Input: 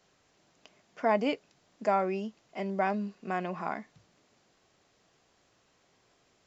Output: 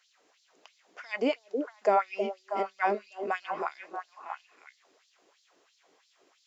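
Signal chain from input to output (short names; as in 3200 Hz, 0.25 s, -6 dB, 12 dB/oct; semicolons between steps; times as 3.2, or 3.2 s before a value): delay with a stepping band-pass 0.317 s, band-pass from 390 Hz, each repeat 1.4 oct, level -3 dB; LFO high-pass sine 3 Hz 310–4400 Hz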